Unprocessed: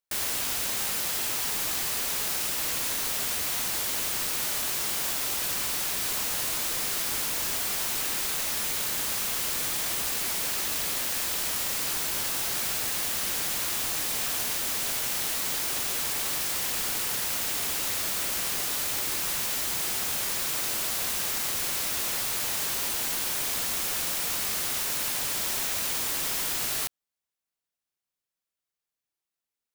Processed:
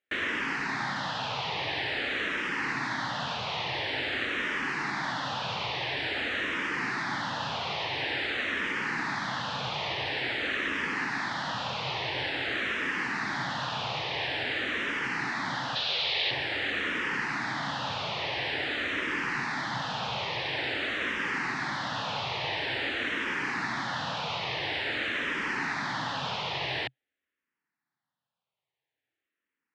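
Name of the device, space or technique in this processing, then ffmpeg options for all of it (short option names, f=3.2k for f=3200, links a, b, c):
barber-pole phaser into a guitar amplifier: -filter_complex "[0:a]asplit=2[a][b];[b]afreqshift=-0.48[c];[a][c]amix=inputs=2:normalize=1,asoftclip=type=tanh:threshold=-26.5dB,highpass=99,equalizer=f=130:t=q:w=4:g=8,equalizer=f=280:t=q:w=4:g=5,equalizer=f=870:t=q:w=4:g=5,equalizer=f=1.8k:t=q:w=4:g=7,lowpass=f=3.5k:w=0.5412,lowpass=f=3.5k:w=1.3066,asettb=1/sr,asplit=3[d][e][f];[d]atrim=end=15.754[g];[e]atrim=start=15.75:end=16.31,asetpts=PTS-STARTPTS,afade=t=in:d=0.004:c=qsin,afade=t=out:st=0.556:d=0.004:c=qsin,equalizer=f=125:t=o:w=1:g=-10,equalizer=f=250:t=o:w=1:g=-8,equalizer=f=500:t=o:w=1:g=3,equalizer=f=1k:t=o:w=1:g=-9,equalizer=f=2k:t=o:w=1:g=3,equalizer=f=4k:t=o:w=1:g=11,equalizer=f=8k:t=o:w=1:g=-8[h];[f]atrim=start=16.306[i];[g][h]acrossfade=d=0.004:c1=hsin:c2=qsin[j];[j][i]acrossfade=d=0.004:c1=qsin:c2=hsin,volume=7.5dB"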